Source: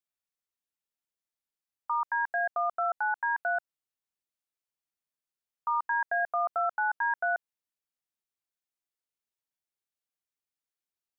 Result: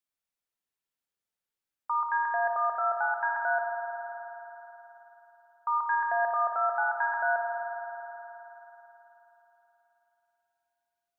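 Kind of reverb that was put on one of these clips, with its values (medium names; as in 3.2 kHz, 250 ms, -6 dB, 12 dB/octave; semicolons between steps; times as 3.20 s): spring tank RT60 3.8 s, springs 53 ms, chirp 35 ms, DRR 1 dB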